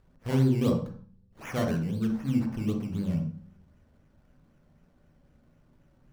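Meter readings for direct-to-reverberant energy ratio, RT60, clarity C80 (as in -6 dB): 3.0 dB, 0.45 s, 10.5 dB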